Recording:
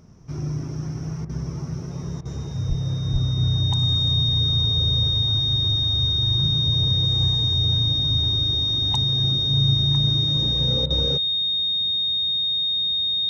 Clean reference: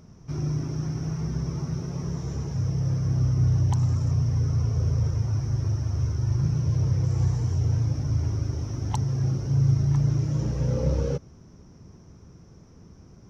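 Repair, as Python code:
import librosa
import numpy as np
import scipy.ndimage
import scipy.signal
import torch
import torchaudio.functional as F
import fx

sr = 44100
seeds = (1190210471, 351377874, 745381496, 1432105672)

y = fx.notch(x, sr, hz=3700.0, q=30.0)
y = fx.fix_deplosive(y, sr, at_s=(2.68, 3.12))
y = fx.fix_interpolate(y, sr, at_s=(1.25, 2.21, 10.86), length_ms=42.0)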